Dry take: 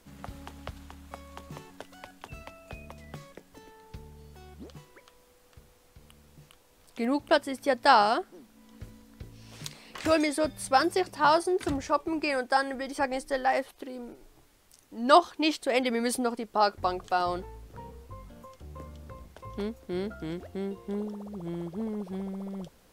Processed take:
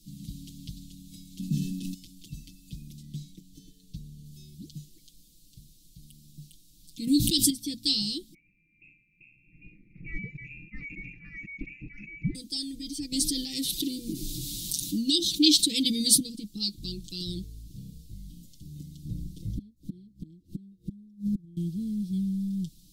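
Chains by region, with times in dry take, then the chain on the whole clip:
1.39–1.94 small resonant body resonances 220/1700/2600 Hz, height 17 dB, ringing for 50 ms + sustainer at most 34 dB/s
3.02–4.26 high shelf 7500 Hz -5.5 dB + notch 5100 Hz, Q 22
7.07–7.5 high shelf 5400 Hz +6.5 dB + fast leveller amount 70%
8.34–12.35 HPF 53 Hz 6 dB/oct + inverted band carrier 2600 Hz + sustainer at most 74 dB/s
13.12–16.2 HPF 84 Hz 6 dB/oct + fast leveller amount 50%
19.05–21.57 flipped gate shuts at -32 dBFS, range -30 dB + resonant low shelf 740 Hz +9 dB, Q 1.5
whole clip: elliptic band-stop 250–3800 Hz, stop band 50 dB; dynamic EQ 3700 Hz, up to +5 dB, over -55 dBFS, Q 4.5; comb 6.2 ms, depth 92%; gain +4 dB

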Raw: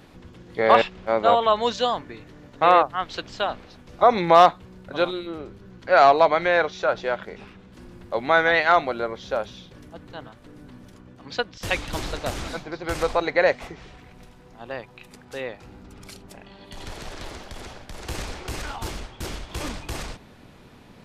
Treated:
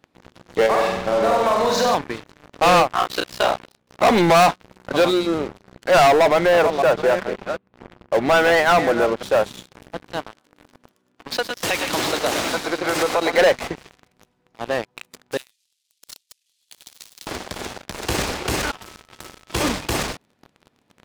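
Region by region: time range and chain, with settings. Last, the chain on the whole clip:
0.66–1.95 bell 3100 Hz -14 dB 0.37 oct + compressor, threshold -27 dBFS + flutter echo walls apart 8.2 m, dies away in 0.98 s
2.9–4.1 notches 60/120/180/240/300 Hz + ring modulator 31 Hz + doubler 34 ms -5 dB
6.08–9.23 reverse delay 0.373 s, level -13.5 dB + tape spacing loss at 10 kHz 30 dB
10.22–13.38 HPF 330 Hz 6 dB/oct + compressor 4:1, threshold -27 dBFS + tapped delay 0.105/0.118/0.613 s -11/-8/-12 dB
15.37–17.27 delta modulation 64 kbps, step -39.5 dBFS + inverse Chebyshev high-pass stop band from 760 Hz, stop band 70 dB
18.7–19.52 compressor 20:1, threshold -39 dBFS + notch 800 Hz, Q 22 + whine 1300 Hz -49 dBFS
whole clip: HPF 270 Hz 6 dB/oct; low shelf 420 Hz +6 dB; sample leveller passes 5; gain -7.5 dB

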